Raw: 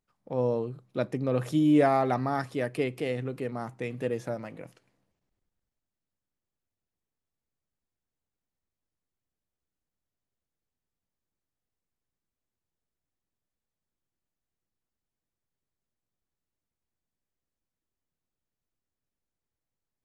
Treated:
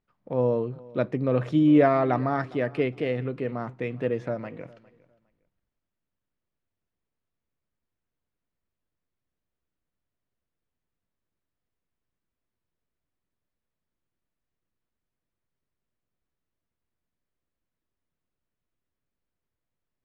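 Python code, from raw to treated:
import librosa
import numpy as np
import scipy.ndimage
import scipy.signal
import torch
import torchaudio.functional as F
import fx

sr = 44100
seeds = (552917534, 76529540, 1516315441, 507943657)

p1 = scipy.signal.sosfilt(scipy.signal.butter(2, 3000.0, 'lowpass', fs=sr, output='sos'), x)
p2 = fx.notch(p1, sr, hz=810.0, q=12.0)
p3 = p2 + fx.echo_feedback(p2, sr, ms=407, feedback_pct=21, wet_db=-22.5, dry=0)
y = p3 * librosa.db_to_amplitude(3.5)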